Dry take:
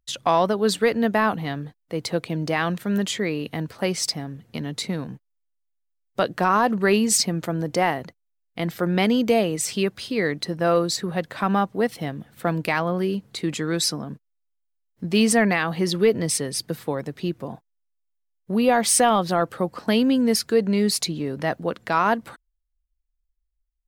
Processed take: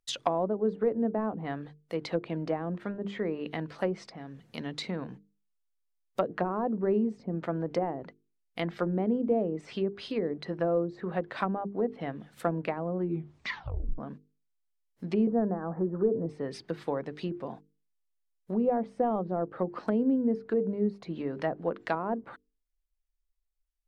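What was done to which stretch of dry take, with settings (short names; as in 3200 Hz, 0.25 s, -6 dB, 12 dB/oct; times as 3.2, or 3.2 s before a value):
4.13–4.58 compressor 2:1, threshold -34 dBFS
12.99 tape stop 0.99 s
15.27–16.26 steep low-pass 1700 Hz 72 dB/oct
whole clip: treble ducked by the level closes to 500 Hz, closed at -18.5 dBFS; bell 83 Hz -8.5 dB 2.3 oct; notches 50/100/150/200/250/300/350/400/450 Hz; gain -3 dB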